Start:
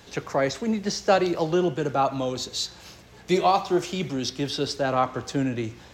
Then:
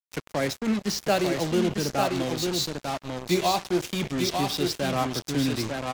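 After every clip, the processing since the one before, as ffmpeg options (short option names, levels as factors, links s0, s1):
-af "firequalizer=gain_entry='entry(260,0);entry(460,-5);entry(680,-4);entry(1100,-7);entry(2200,0)':delay=0.05:min_phase=1,aecho=1:1:897:0.596,acrusher=bits=4:mix=0:aa=0.5"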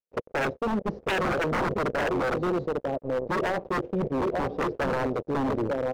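-af "lowpass=f=500:t=q:w=4.4,aeval=exprs='0.0891*(abs(mod(val(0)/0.0891+3,4)-2)-1)':c=same"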